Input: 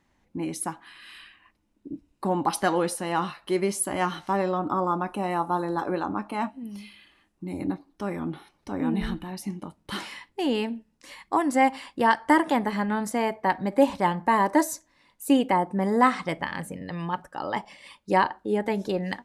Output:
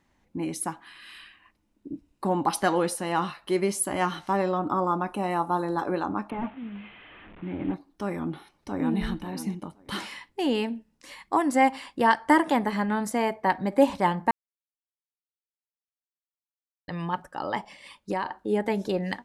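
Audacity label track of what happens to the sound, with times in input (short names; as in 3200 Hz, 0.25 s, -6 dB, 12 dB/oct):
6.300000	7.740000	delta modulation 16 kbps, step -42 dBFS
8.250000	9.010000	echo throw 0.53 s, feedback 20%, level -12.5 dB
14.310000	16.880000	mute
17.550000	18.400000	compressor, threshold -24 dBFS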